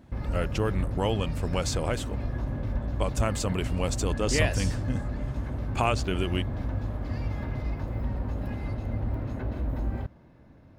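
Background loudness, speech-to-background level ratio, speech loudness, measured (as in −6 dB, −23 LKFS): −33.0 LKFS, 3.0 dB, −30.0 LKFS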